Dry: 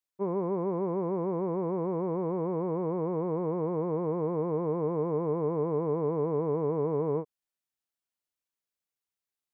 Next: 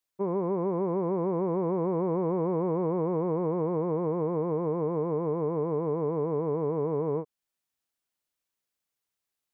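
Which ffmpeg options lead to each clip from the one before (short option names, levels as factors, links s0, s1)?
-af "alimiter=limit=0.0631:level=0:latency=1:release=424,volume=1.68"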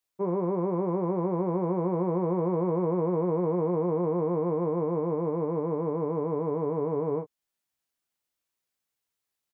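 -filter_complex "[0:a]asplit=2[s0][s1];[s1]adelay=17,volume=0.447[s2];[s0][s2]amix=inputs=2:normalize=0"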